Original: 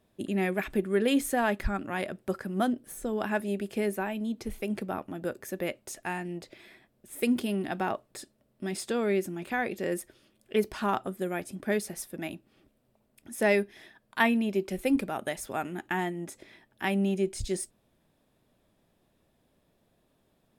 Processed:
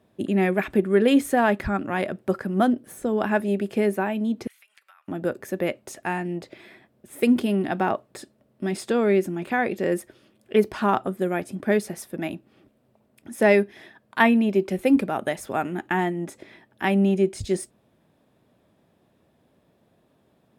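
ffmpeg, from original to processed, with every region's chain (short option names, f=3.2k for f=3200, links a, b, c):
-filter_complex "[0:a]asettb=1/sr,asplit=3[a][b][c];[a]atrim=end=4.474[d];[b]atrim=start=4.47:end=5.08,asetpts=PTS-STARTPTS,afade=t=in:d=0.004:c=qsin,afade=t=out:st=0.606:d=0.004:c=qsin,highpass=f=1.4k:w=0.5412,highpass=f=1.4k:w=1.3066,acompressor=threshold=-55dB:ratio=20:attack=3.2:release=140:knee=1:detection=peak[e];[c]atrim=start=5.076[f];[d][e]acrossfade=d=0.004:c1=hsin:c2=qsin[g];[g][f]acrossfade=d=0.004:c1=qsin:c2=hsin,highpass=84,highshelf=f=3k:g=-8.5,volume=7.5dB"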